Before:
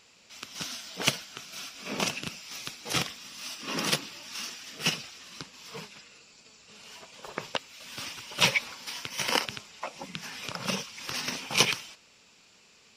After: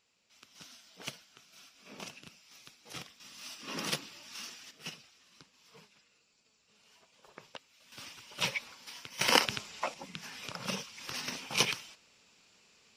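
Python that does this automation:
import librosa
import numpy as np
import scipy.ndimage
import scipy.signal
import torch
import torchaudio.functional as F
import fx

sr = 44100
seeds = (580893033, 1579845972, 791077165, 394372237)

y = fx.gain(x, sr, db=fx.steps((0.0, -16.0), (3.2, -7.0), (4.71, -16.0), (7.92, -9.5), (9.21, 2.0), (9.94, -5.5)))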